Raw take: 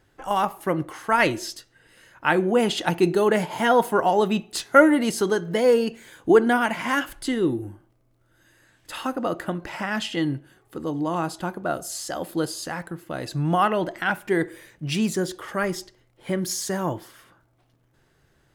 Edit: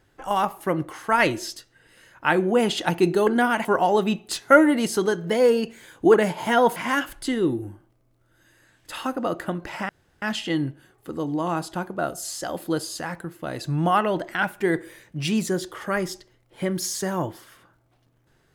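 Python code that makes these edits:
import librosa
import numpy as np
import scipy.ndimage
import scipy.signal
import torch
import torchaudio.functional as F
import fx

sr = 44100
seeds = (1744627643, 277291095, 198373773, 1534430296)

y = fx.edit(x, sr, fx.swap(start_s=3.27, length_s=0.62, other_s=6.38, other_length_s=0.38),
    fx.insert_room_tone(at_s=9.89, length_s=0.33), tone=tone)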